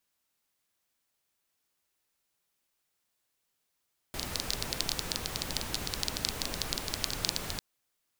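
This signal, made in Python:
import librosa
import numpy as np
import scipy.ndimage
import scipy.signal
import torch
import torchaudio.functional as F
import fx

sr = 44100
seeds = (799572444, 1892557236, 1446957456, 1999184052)

y = fx.rain(sr, seeds[0], length_s=3.45, drops_per_s=13.0, hz=4400.0, bed_db=0.0)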